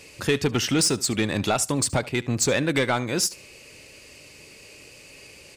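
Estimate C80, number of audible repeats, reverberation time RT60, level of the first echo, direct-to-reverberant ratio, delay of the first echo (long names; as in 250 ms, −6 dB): no reverb audible, 1, no reverb audible, −20.0 dB, no reverb audible, 73 ms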